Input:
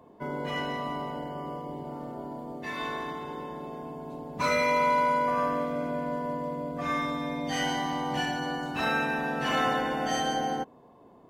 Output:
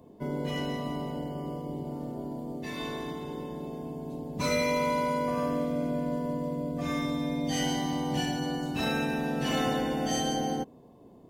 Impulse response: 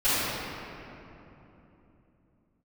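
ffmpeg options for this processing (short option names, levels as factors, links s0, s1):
-af "equalizer=f=1300:t=o:w=2.2:g=-14,volume=1.88"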